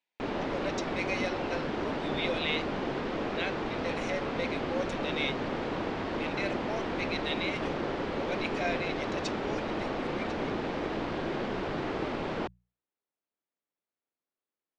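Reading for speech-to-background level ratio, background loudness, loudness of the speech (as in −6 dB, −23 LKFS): −3.5 dB, −33.5 LKFS, −37.0 LKFS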